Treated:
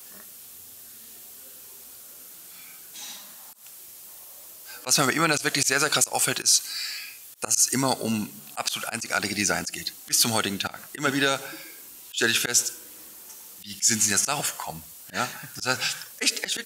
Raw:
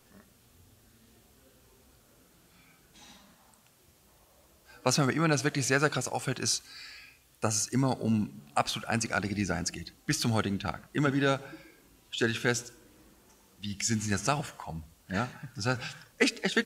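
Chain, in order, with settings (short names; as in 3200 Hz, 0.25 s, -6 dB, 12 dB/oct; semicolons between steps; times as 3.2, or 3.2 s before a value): RIAA curve recording; auto swell 0.138 s; limiter -16 dBFS, peak gain reduction 8 dB; gain +8 dB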